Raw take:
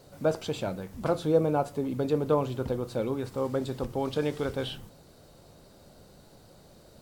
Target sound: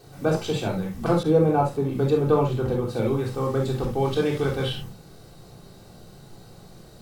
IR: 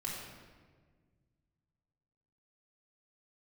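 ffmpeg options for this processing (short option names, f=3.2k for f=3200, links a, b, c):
-filter_complex "[1:a]atrim=start_sample=2205,atrim=end_sample=3528[a];[0:a][a]afir=irnorm=-1:irlink=0,asettb=1/sr,asplit=3[b][c][d];[b]atrim=end=1.234[e];[c]atrim=start=1.23:end=2.97,asetpts=PTS-STARTPTS,afade=t=in:d=0.004:c=qsin,afade=t=out:st=1.736:d=0.004:c=qsin,adynamicequalizer=threshold=0.00501:dfrequency=2400:dqfactor=0.7:tfrequency=2400:tqfactor=0.7:attack=5:release=100:ratio=0.375:range=2:mode=cutabove:tftype=highshelf[f];[d]atrim=start=2.966[g];[e][f]acrossfade=d=0.004:c1=hsin:c2=qsin[h];[h][g]acrossfade=d=0.004:c1=qsin:c2=hsin,volume=6.5dB"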